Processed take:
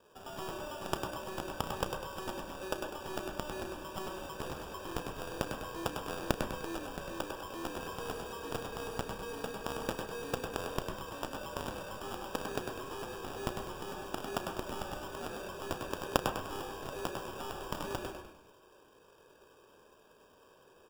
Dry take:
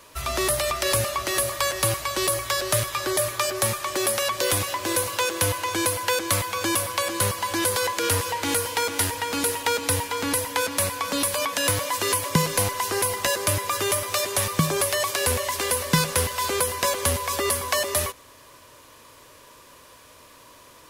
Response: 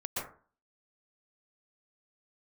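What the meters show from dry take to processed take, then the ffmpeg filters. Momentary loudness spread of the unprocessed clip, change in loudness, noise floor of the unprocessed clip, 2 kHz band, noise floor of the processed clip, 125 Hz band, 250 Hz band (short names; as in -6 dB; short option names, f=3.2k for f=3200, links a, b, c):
2 LU, -16.5 dB, -50 dBFS, -16.5 dB, -62 dBFS, -15.5 dB, -10.5 dB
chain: -filter_complex "[0:a]highpass=f=410:t=q:w=4.9,equalizer=f=14k:w=0.46:g=14,acompressor=threshold=-15dB:ratio=6,aeval=exprs='1.33*(cos(1*acos(clip(val(0)/1.33,-1,1)))-cos(1*PI/2))+0.473*(cos(3*acos(clip(val(0)/1.33,-1,1)))-cos(3*PI/2))+0.00944*(cos(4*acos(clip(val(0)/1.33,-1,1)))-cos(4*PI/2))+0.00841*(cos(5*acos(clip(val(0)/1.33,-1,1)))-cos(5*PI/2))+0.00944*(cos(6*acos(clip(val(0)/1.33,-1,1)))-cos(6*PI/2))':c=same,aemphasis=mode=reproduction:type=50kf,acrusher=samples=21:mix=1:aa=0.000001,asplit=6[a][b][c][d][e][f];[b]adelay=100,afreqshift=-36,volume=-6dB[g];[c]adelay=200,afreqshift=-72,volume=-13.1dB[h];[d]adelay=300,afreqshift=-108,volume=-20.3dB[i];[e]adelay=400,afreqshift=-144,volume=-27.4dB[j];[f]adelay=500,afreqshift=-180,volume=-34.5dB[k];[a][g][h][i][j][k]amix=inputs=6:normalize=0,asplit=2[l][m];[1:a]atrim=start_sample=2205,asetrate=66150,aresample=44100,adelay=33[n];[m][n]afir=irnorm=-1:irlink=0,volume=-7.5dB[o];[l][o]amix=inputs=2:normalize=0,volume=12dB"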